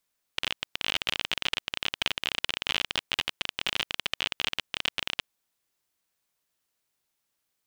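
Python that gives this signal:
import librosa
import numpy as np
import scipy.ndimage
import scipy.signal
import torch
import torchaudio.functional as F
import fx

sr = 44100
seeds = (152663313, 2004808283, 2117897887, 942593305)

y = fx.geiger_clicks(sr, seeds[0], length_s=4.86, per_s=34.0, level_db=-10.0)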